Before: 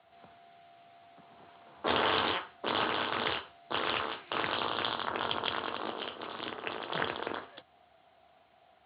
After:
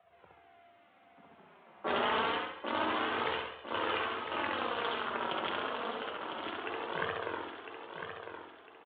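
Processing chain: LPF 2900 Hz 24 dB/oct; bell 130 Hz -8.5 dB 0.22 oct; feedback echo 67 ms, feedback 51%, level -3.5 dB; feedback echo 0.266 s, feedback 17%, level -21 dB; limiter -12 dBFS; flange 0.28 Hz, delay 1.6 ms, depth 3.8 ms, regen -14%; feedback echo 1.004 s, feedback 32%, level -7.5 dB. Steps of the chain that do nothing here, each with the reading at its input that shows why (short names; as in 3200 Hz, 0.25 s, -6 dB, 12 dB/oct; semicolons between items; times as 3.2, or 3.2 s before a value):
limiter -12 dBFS: input peak -15.0 dBFS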